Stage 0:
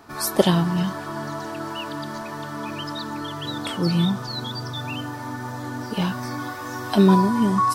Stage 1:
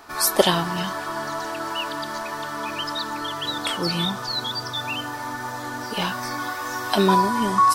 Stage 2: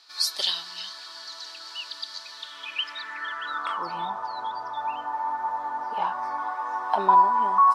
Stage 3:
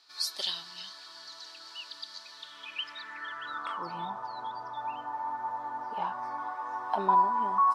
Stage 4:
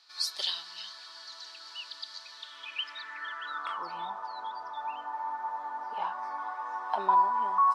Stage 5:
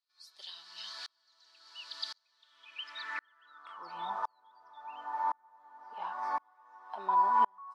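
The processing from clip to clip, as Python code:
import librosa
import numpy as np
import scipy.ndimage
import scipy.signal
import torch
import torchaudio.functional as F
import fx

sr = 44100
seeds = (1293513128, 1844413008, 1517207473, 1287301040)

y1 = fx.peak_eq(x, sr, hz=150.0, db=-13.5, octaves=2.6)
y1 = F.gain(torch.from_numpy(y1), 5.5).numpy()
y2 = fx.filter_sweep_bandpass(y1, sr, from_hz=4300.0, to_hz=890.0, start_s=2.3, end_s=4.0, q=4.5)
y2 = F.gain(torch.from_numpy(y2), 6.0).numpy()
y3 = fx.low_shelf(y2, sr, hz=260.0, db=10.5)
y3 = F.gain(torch.from_numpy(y3), -7.0).numpy()
y4 = fx.weighting(y3, sr, curve='A')
y5 = fx.tremolo_decay(y4, sr, direction='swelling', hz=0.94, depth_db=38)
y5 = F.gain(torch.from_numpy(y5), 6.0).numpy()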